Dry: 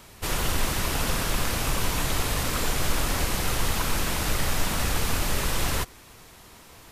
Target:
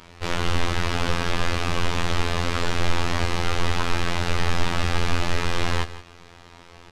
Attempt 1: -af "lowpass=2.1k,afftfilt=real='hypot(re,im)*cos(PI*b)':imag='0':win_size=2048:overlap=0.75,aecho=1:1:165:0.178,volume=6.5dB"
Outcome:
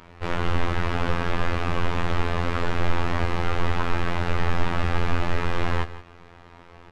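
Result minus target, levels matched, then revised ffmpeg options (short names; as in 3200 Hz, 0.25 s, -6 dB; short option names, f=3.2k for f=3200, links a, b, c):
4000 Hz band -6.5 dB
-af "lowpass=4.3k,afftfilt=real='hypot(re,im)*cos(PI*b)':imag='0':win_size=2048:overlap=0.75,aecho=1:1:165:0.178,volume=6.5dB"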